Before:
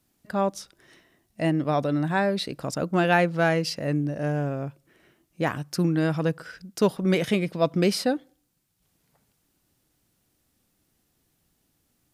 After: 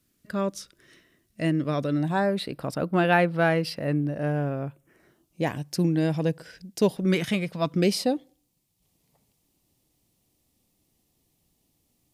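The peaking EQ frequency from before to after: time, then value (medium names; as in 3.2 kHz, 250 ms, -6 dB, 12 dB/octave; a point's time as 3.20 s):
peaking EQ -13.5 dB 0.51 oct
1.93 s 810 Hz
2.45 s 6.6 kHz
4.63 s 6.6 kHz
5.46 s 1.3 kHz
6.94 s 1.3 kHz
7.46 s 250 Hz
7.92 s 1.5 kHz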